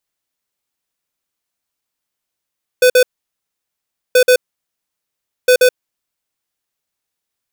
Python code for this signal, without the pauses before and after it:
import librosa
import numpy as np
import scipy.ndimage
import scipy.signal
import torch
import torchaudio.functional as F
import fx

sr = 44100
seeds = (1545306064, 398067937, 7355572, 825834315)

y = fx.beep_pattern(sr, wave='square', hz=502.0, on_s=0.08, off_s=0.05, beeps=2, pause_s=1.12, groups=3, level_db=-8.5)